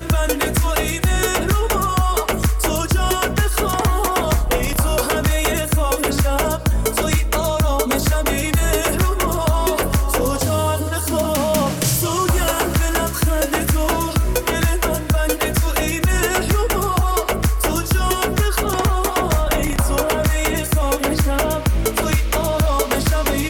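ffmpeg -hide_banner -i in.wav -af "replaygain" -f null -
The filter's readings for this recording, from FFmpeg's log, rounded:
track_gain = +2.6 dB
track_peak = 0.241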